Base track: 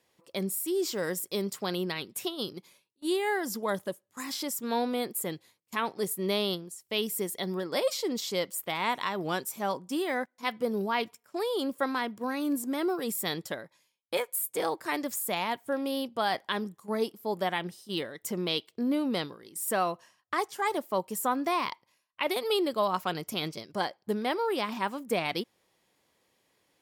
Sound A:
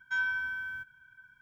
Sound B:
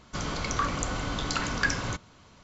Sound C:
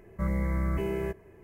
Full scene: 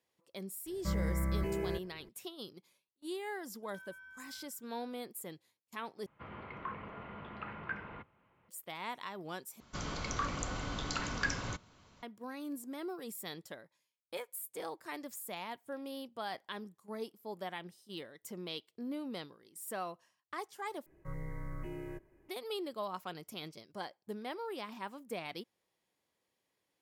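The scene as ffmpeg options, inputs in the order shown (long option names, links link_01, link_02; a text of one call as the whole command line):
ffmpeg -i bed.wav -i cue0.wav -i cue1.wav -i cue2.wav -filter_complex "[3:a]asplit=2[link_01][link_02];[2:a]asplit=2[link_03][link_04];[0:a]volume=-12dB[link_05];[1:a]acompressor=threshold=-35dB:ratio=6:attack=3.2:release=140:knee=1:detection=peak[link_06];[link_03]highpass=frequency=170:width_type=q:width=0.5412,highpass=frequency=170:width_type=q:width=1.307,lowpass=frequency=2700:width_type=q:width=0.5176,lowpass=frequency=2700:width_type=q:width=0.7071,lowpass=frequency=2700:width_type=q:width=1.932,afreqshift=-78[link_07];[link_02]afreqshift=-39[link_08];[link_05]asplit=4[link_09][link_10][link_11][link_12];[link_09]atrim=end=6.064[link_13];[link_07]atrim=end=2.43,asetpts=PTS-STARTPTS,volume=-13dB[link_14];[link_10]atrim=start=8.486:end=9.604[link_15];[link_04]atrim=end=2.43,asetpts=PTS-STARTPTS,volume=-7.5dB[link_16];[link_11]atrim=start=12.026:end=20.864[link_17];[link_08]atrim=end=1.43,asetpts=PTS-STARTPTS,volume=-12.5dB[link_18];[link_12]atrim=start=22.286[link_19];[link_01]atrim=end=1.43,asetpts=PTS-STARTPTS,volume=-5dB,afade=type=in:duration=0.004:curve=hsin,afade=type=out:start_time=1.426:duration=0.004:curve=hsin,adelay=660[link_20];[link_06]atrim=end=1.41,asetpts=PTS-STARTPTS,volume=-16.5dB,afade=type=in:duration=0.004:curve=hsin,afade=type=out:start_time=1.406:duration=0.004:curve=hsin,adelay=3630[link_21];[link_13][link_14]acrossfade=duration=0.004:curve1=hsin:curve2=hsin[link_22];[link_22][link_15]acrossfade=duration=0.004:curve1=hsin:curve2=hsin[link_23];[link_23][link_16]acrossfade=duration=0.004:curve1=hsin:curve2=hsin[link_24];[link_24][link_17]acrossfade=duration=0.004:curve1=hsin:curve2=hsin[link_25];[link_25][link_18]acrossfade=duration=0.004:curve1=hsin:curve2=hsin[link_26];[link_26][link_19]acrossfade=duration=0.004:curve1=hsin:curve2=hsin[link_27];[link_27][link_20][link_21]amix=inputs=3:normalize=0" out.wav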